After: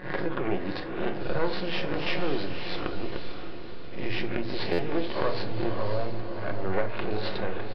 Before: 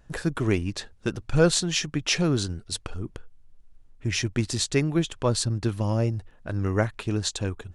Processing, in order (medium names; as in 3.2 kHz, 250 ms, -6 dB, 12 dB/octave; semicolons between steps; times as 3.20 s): reverse spectral sustain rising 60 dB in 0.45 s; peaking EQ 2.5 kHz -4 dB 2.9 oct; half-wave rectifier; resampled via 11.025 kHz; compression 3:1, threshold -31 dBFS, peak gain reduction 11.5 dB; tone controls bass -10 dB, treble -14 dB; band-stop 1.3 kHz, Q 25; echo that smears into a reverb 561 ms, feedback 44%, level -7 dB; simulated room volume 340 m³, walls furnished, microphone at 0.96 m; buffer glitch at 4.72 s, samples 512, times 5; trim +8 dB